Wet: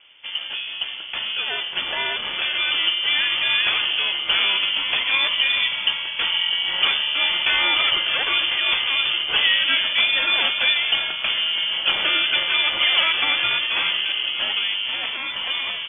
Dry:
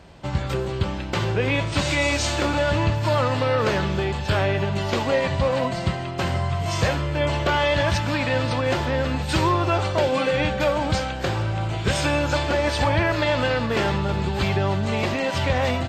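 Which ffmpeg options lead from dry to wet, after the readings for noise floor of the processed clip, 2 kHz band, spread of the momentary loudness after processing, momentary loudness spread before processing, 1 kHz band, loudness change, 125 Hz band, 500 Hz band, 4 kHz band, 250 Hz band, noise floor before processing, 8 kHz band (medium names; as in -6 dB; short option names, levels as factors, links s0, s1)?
-32 dBFS, +6.0 dB, 7 LU, 5 LU, -6.0 dB, +4.0 dB, under -25 dB, -16.5 dB, +14.0 dB, -18.5 dB, -29 dBFS, under -40 dB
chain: -af "dynaudnorm=f=770:g=7:m=2.24,aeval=exprs='val(0)*sin(2*PI*540*n/s)':c=same,lowpass=f=3000:t=q:w=0.5098,lowpass=f=3000:t=q:w=0.6013,lowpass=f=3000:t=q:w=0.9,lowpass=f=3000:t=q:w=2.563,afreqshift=-3500,volume=0.841"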